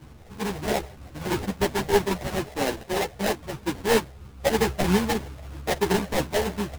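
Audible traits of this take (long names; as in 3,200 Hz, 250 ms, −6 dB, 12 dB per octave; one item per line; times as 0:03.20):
phaser sweep stages 12, 3.1 Hz, lowest notch 310–1,400 Hz
aliases and images of a low sample rate 1,300 Hz, jitter 20%
a shimmering, thickened sound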